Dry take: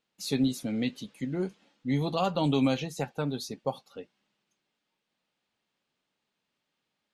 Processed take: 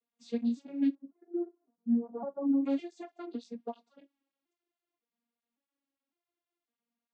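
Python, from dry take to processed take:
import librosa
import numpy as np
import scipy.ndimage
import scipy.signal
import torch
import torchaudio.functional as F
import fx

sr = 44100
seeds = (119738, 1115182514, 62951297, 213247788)

y = fx.vocoder_arp(x, sr, chord='minor triad', root=58, every_ms=556)
y = fx.gaussian_blur(y, sr, sigma=8.2, at=(0.95, 2.66))
y = fx.flanger_cancel(y, sr, hz=1.2, depth_ms=5.8)
y = y * librosa.db_to_amplitude(1.5)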